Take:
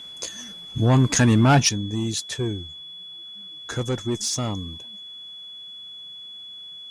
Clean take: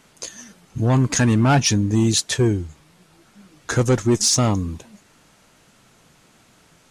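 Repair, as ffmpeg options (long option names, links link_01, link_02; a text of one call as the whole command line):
ffmpeg -i in.wav -af "bandreject=frequency=3400:width=30,asetnsamples=nb_out_samples=441:pad=0,asendcmd='1.69 volume volume 8.5dB',volume=0dB" out.wav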